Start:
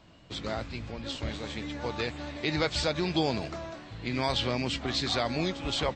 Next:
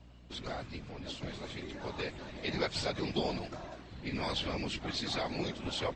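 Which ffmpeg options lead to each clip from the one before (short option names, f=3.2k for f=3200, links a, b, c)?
-af "afftfilt=real='hypot(re,im)*cos(2*PI*random(0))':imag='hypot(re,im)*sin(2*PI*random(1))':win_size=512:overlap=0.75,aeval=exprs='val(0)+0.00178*(sin(2*PI*60*n/s)+sin(2*PI*2*60*n/s)/2+sin(2*PI*3*60*n/s)/3+sin(2*PI*4*60*n/s)/4+sin(2*PI*5*60*n/s)/5)':c=same"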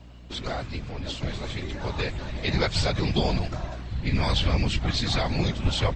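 -af "asubboost=boost=5:cutoff=140,volume=8.5dB"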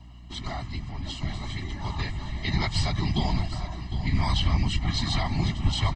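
-af "aecho=1:1:1:0.96,aecho=1:1:756:0.237,volume=-5dB"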